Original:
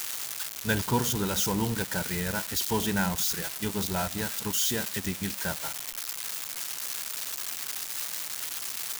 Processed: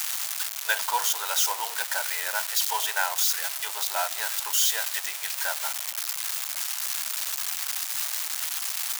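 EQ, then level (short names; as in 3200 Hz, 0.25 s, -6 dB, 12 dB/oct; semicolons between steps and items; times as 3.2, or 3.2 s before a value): steep high-pass 630 Hz 36 dB/oct; +4.5 dB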